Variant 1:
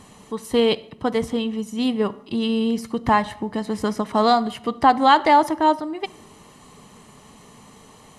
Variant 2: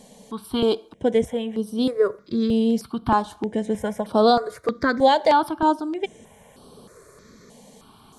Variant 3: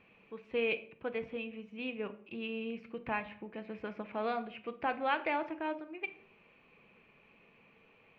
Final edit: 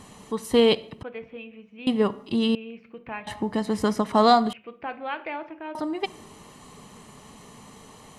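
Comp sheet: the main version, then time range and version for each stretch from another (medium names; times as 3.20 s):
1
1.03–1.87 s: from 3
2.55–3.27 s: from 3
4.53–5.75 s: from 3
not used: 2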